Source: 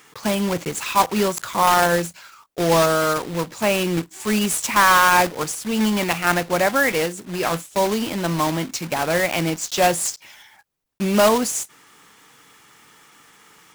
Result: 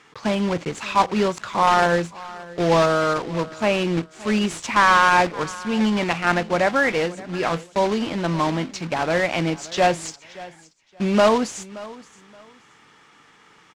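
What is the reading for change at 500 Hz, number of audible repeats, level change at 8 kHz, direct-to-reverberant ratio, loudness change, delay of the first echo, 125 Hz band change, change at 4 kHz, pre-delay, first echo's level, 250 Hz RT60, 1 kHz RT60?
-0.5 dB, 2, -10.0 dB, no reverb, -1.0 dB, 574 ms, 0.0 dB, -3.0 dB, no reverb, -19.5 dB, no reverb, no reverb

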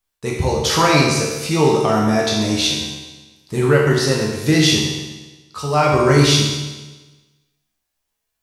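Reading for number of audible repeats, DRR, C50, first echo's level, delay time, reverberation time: no echo, -3.5 dB, 1.0 dB, no echo, no echo, 1.2 s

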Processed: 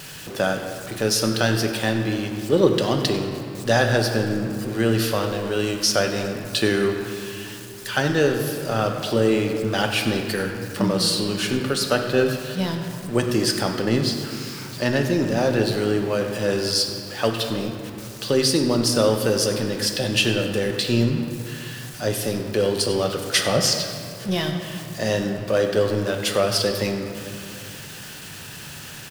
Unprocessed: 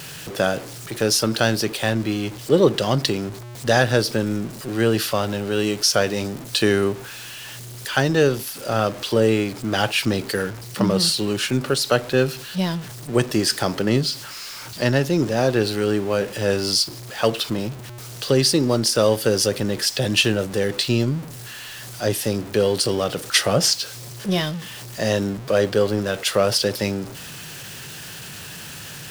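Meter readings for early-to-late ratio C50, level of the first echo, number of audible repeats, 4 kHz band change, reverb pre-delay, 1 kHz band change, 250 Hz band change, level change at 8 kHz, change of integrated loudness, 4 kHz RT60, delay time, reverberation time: 5.5 dB, -15.0 dB, 1, -1.5 dB, 3 ms, -1.0 dB, 0.0 dB, -2.0 dB, -1.5 dB, 1.6 s, 96 ms, 2.6 s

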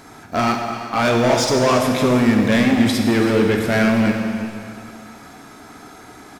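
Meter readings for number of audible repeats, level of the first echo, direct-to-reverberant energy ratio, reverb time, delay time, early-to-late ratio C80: 1, -14.0 dB, 2.0 dB, 2.4 s, 335 ms, 4.5 dB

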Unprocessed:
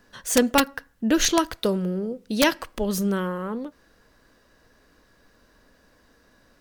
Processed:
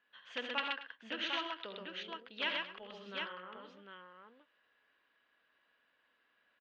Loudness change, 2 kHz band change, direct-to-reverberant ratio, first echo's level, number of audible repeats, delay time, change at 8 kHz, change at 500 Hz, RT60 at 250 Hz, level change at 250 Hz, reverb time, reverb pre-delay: -16.0 dB, -9.5 dB, no reverb, -15.5 dB, 5, 52 ms, under -35 dB, -21.0 dB, no reverb, -27.0 dB, no reverb, no reverb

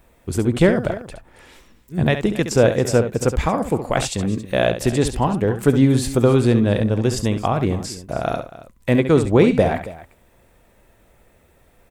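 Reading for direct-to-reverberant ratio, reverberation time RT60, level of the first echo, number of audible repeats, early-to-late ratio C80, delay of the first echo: no reverb, no reverb, -9.5 dB, 2, no reverb, 68 ms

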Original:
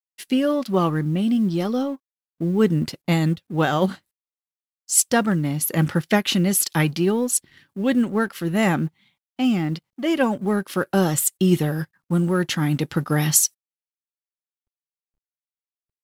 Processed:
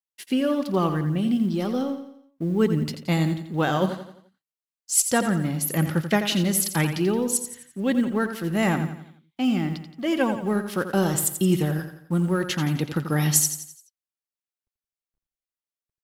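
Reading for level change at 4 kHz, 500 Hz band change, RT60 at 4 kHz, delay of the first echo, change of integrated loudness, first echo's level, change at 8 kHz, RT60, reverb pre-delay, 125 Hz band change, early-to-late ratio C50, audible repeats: -2.5 dB, -2.5 dB, no reverb, 86 ms, -2.5 dB, -9.5 dB, -2.5 dB, no reverb, no reverb, -2.5 dB, no reverb, 4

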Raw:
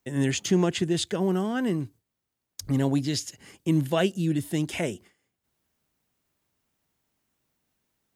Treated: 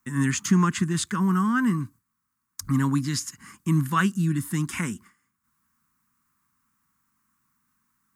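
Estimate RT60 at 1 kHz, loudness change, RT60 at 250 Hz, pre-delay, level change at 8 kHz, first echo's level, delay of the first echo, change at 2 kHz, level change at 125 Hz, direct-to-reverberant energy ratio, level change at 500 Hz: no reverb, +2.0 dB, no reverb, no reverb, +3.5 dB, no echo, no echo, +5.5 dB, +3.5 dB, no reverb, -10.5 dB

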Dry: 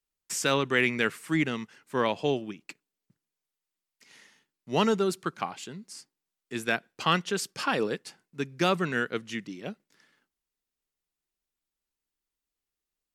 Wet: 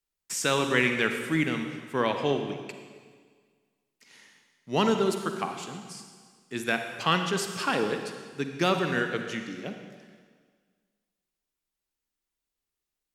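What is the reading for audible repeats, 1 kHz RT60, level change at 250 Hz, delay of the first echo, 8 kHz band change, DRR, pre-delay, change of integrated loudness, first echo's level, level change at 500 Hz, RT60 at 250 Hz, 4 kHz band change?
no echo, 1.7 s, +1.0 dB, no echo, +1.0 dB, 5.5 dB, 38 ms, +0.5 dB, no echo, +1.0 dB, 1.8 s, +1.0 dB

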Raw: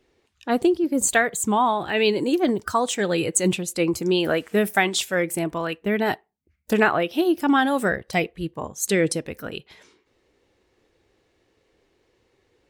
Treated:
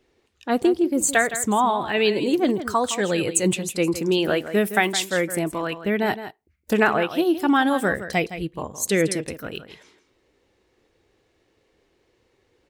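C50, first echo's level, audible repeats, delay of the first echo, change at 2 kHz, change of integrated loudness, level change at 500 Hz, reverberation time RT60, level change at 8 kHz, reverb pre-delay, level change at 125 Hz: no reverb, -12.0 dB, 1, 164 ms, +0.5 dB, 0.0 dB, +0.5 dB, no reverb, +0.5 dB, no reverb, 0.0 dB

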